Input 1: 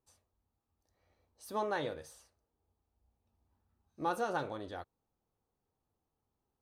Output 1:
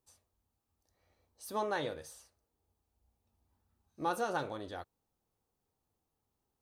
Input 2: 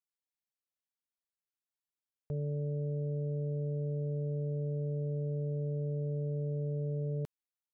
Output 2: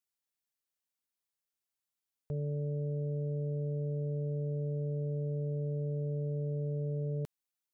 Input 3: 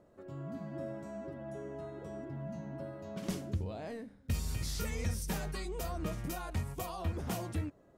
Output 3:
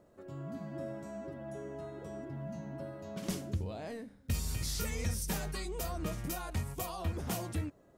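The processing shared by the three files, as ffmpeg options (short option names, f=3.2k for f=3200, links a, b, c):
-af "highshelf=f=4k:g=5"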